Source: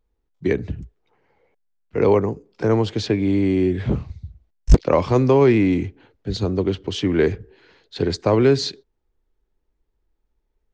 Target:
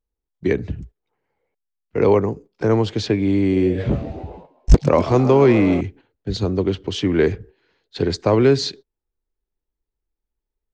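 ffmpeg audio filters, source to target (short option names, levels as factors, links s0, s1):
-filter_complex "[0:a]asettb=1/sr,asplit=3[s0][s1][s2];[s0]atrim=end=3.394[s3];[s1]atrim=start=3.39:end=5.81,asetpts=PTS-STARTPTS,afade=t=in:d=0.004:c=qsin,afade=t=out:st=2.416:d=0.004:c=qsin,asplit=8[s4][s5][s6][s7][s8][s9][s10][s11];[s5]adelay=133,afreqshift=97,volume=0.211[s12];[s6]adelay=266,afreqshift=194,volume=0.13[s13];[s7]adelay=399,afreqshift=291,volume=0.0813[s14];[s8]adelay=532,afreqshift=388,volume=0.0501[s15];[s9]adelay=665,afreqshift=485,volume=0.0313[s16];[s10]adelay=798,afreqshift=582,volume=0.0193[s17];[s11]adelay=931,afreqshift=679,volume=0.012[s18];[s4][s12][s13][s14][s15][s16][s17][s18]amix=inputs=8:normalize=0,atrim=end_sample=106722[s19];[s2]atrim=start=5.806[s20];[s3][s19]acrossfade=d=0.004:c1=hsin:c2=qsin[s21];[s21][s20]acrossfade=d=0.004:c1=qsin:c2=hsin,agate=range=0.251:threshold=0.01:ratio=16:detection=peak,volume=1.12"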